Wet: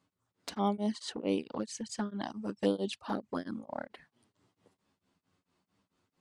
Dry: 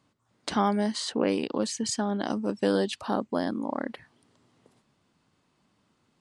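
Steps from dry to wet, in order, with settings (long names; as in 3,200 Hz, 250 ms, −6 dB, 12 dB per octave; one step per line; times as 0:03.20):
flanger swept by the level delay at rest 11.2 ms, full sweep at −21.5 dBFS
tremolo along a rectified sine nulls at 4.5 Hz
level −2 dB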